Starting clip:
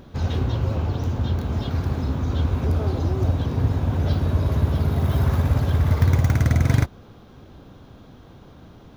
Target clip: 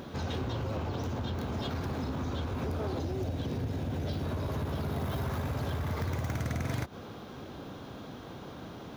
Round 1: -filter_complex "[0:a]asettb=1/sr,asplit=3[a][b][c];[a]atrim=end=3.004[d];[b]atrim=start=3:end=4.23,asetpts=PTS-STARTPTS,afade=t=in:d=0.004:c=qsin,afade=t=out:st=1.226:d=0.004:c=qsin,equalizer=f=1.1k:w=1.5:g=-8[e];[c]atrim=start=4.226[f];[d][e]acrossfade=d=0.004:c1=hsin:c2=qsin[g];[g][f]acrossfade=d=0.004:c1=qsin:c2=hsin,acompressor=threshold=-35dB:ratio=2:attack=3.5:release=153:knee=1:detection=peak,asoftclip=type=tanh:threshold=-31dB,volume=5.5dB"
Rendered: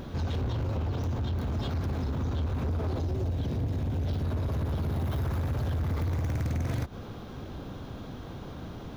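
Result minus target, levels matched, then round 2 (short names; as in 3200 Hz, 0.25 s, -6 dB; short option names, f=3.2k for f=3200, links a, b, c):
250 Hz band -2.5 dB
-filter_complex "[0:a]asettb=1/sr,asplit=3[a][b][c];[a]atrim=end=3.004[d];[b]atrim=start=3:end=4.23,asetpts=PTS-STARTPTS,afade=t=in:d=0.004:c=qsin,afade=t=out:st=1.226:d=0.004:c=qsin,equalizer=f=1.1k:w=1.5:g=-8[e];[c]atrim=start=4.226[f];[d][e]acrossfade=d=0.004:c1=hsin:c2=qsin[g];[g][f]acrossfade=d=0.004:c1=qsin:c2=hsin,acompressor=threshold=-35dB:ratio=2:attack=3.5:release=153:knee=1:detection=peak,highpass=f=220:p=1,asoftclip=type=tanh:threshold=-31dB,volume=5.5dB"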